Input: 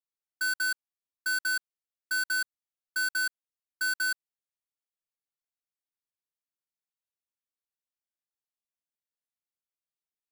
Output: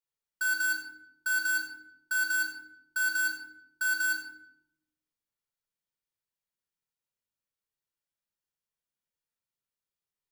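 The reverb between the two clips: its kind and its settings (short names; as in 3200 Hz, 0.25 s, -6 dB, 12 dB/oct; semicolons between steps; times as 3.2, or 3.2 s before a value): shoebox room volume 2100 m³, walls furnished, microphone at 4.6 m; gain -3 dB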